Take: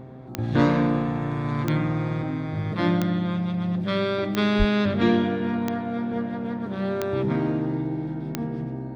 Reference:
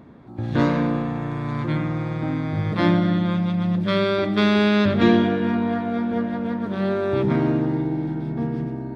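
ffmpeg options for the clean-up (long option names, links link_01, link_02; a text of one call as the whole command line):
ffmpeg -i in.wav -filter_complex "[0:a]adeclick=threshold=4,bandreject=frequency=129.4:width_type=h:width=4,bandreject=frequency=258.8:width_type=h:width=4,bandreject=frequency=388.2:width_type=h:width=4,bandreject=frequency=517.6:width_type=h:width=4,bandreject=frequency=647:width_type=h:width=4,bandreject=frequency=776.4:width_type=h:width=4,asplit=3[link_01][link_02][link_03];[link_01]afade=type=out:start_time=4.58:duration=0.02[link_04];[link_02]highpass=frequency=140:width=0.5412,highpass=frequency=140:width=1.3066,afade=type=in:start_time=4.58:duration=0.02,afade=type=out:start_time=4.7:duration=0.02[link_05];[link_03]afade=type=in:start_time=4.7:duration=0.02[link_06];[link_04][link_05][link_06]amix=inputs=3:normalize=0,asetnsamples=nb_out_samples=441:pad=0,asendcmd='2.22 volume volume 4dB',volume=0dB" out.wav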